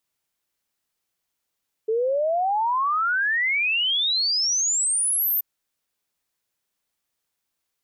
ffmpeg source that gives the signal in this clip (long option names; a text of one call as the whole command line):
ffmpeg -f lavfi -i "aevalsrc='0.106*clip(min(t,3.53-t)/0.01,0,1)*sin(2*PI*430*3.53/log(14000/430)*(exp(log(14000/430)*t/3.53)-1))':duration=3.53:sample_rate=44100" out.wav